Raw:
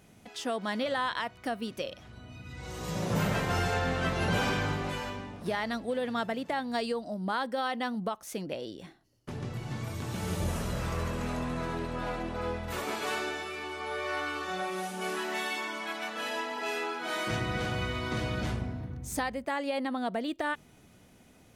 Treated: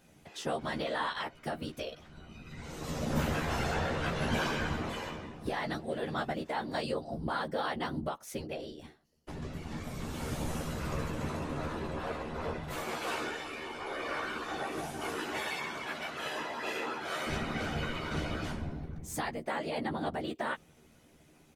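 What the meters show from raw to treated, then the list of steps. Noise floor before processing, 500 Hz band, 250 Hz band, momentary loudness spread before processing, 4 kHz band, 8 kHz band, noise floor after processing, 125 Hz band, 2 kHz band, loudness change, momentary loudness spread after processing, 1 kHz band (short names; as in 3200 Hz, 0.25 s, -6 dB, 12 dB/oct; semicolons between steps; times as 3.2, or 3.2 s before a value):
-58 dBFS, -3.0 dB, -3.0 dB, 9 LU, -3.0 dB, -3.0 dB, -61 dBFS, -3.5 dB, -3.0 dB, -3.0 dB, 9 LU, -3.0 dB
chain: whisperiser; doubler 13 ms -5 dB; gain -4 dB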